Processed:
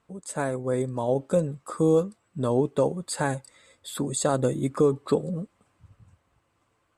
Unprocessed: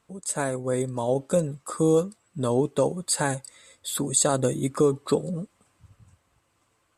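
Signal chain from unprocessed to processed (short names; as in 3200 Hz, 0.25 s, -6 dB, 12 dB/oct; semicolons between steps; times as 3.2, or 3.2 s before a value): high shelf 3700 Hz -9.5 dB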